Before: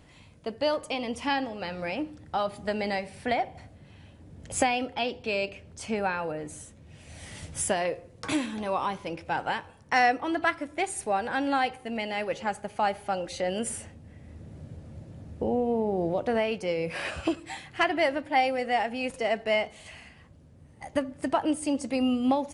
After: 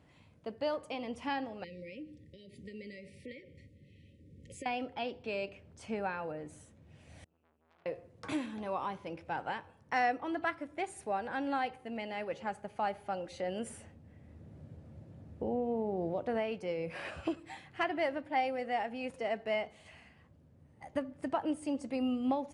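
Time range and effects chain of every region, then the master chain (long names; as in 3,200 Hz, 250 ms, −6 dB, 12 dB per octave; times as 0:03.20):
0:01.64–0:04.66: downward compressor 2.5 to 1, threshold −36 dBFS + linear-phase brick-wall band-stop 580–1,800 Hz
0:07.24–0:07.86: resonances in every octave E, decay 0.76 s + saturating transformer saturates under 3,200 Hz
whole clip: high-pass filter 66 Hz; high-shelf EQ 3,400 Hz −9 dB; level −7 dB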